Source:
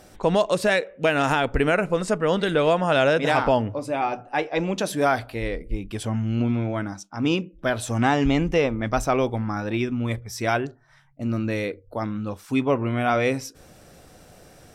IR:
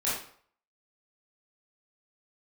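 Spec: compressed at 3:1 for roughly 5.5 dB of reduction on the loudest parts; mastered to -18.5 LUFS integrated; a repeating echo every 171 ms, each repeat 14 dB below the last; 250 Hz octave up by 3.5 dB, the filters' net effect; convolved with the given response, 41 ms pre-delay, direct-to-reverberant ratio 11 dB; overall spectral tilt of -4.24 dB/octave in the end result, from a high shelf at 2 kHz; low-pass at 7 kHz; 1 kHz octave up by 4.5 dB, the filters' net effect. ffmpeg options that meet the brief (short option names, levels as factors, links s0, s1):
-filter_complex "[0:a]lowpass=7000,equalizer=f=250:t=o:g=4,equalizer=f=1000:t=o:g=8,highshelf=f=2000:g=-8,acompressor=threshold=0.1:ratio=3,aecho=1:1:171|342:0.2|0.0399,asplit=2[s0][s1];[1:a]atrim=start_sample=2205,adelay=41[s2];[s1][s2]afir=irnorm=-1:irlink=0,volume=0.106[s3];[s0][s3]amix=inputs=2:normalize=0,volume=2"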